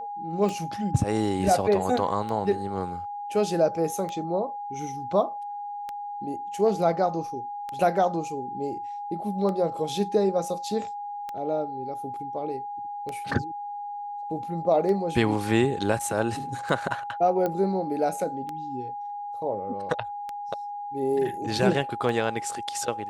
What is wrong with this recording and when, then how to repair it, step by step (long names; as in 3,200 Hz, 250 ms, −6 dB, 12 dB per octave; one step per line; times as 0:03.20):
scratch tick 33 1/3 rpm
whistle 820 Hz −32 dBFS
0:17.46: click −15 dBFS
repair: click removal
notch filter 820 Hz, Q 30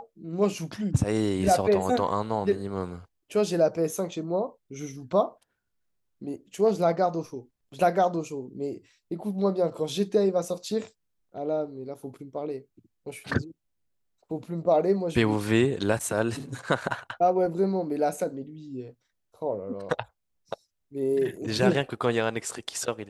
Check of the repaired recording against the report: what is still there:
none of them is left